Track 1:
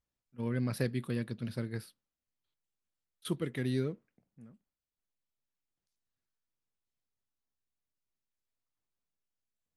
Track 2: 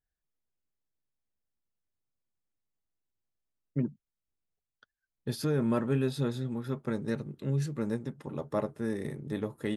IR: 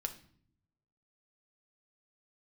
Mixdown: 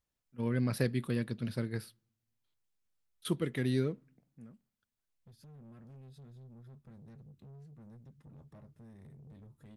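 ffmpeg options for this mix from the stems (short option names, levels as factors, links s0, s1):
-filter_complex "[0:a]volume=1.12,asplit=3[s0][s1][s2];[s1]volume=0.0708[s3];[1:a]asubboost=boost=8:cutoff=150,acompressor=threshold=0.0158:ratio=3,asoftclip=type=tanh:threshold=0.0133,volume=0.237[s4];[s2]apad=whole_len=430593[s5];[s4][s5]sidechaincompress=threshold=0.00398:ratio=8:attack=8.4:release=1160[s6];[2:a]atrim=start_sample=2205[s7];[s3][s7]afir=irnorm=-1:irlink=0[s8];[s0][s6][s8]amix=inputs=3:normalize=0"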